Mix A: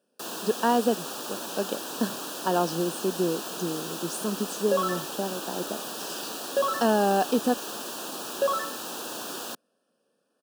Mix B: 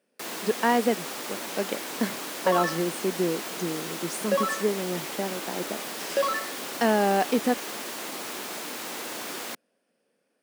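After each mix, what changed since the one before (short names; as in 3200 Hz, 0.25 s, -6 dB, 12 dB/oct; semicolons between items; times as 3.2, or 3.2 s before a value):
second sound: entry -2.25 s; master: remove Butterworth band-stop 2100 Hz, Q 2.1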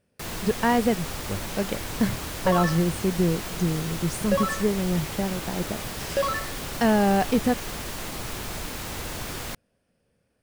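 master: remove HPF 240 Hz 24 dB/oct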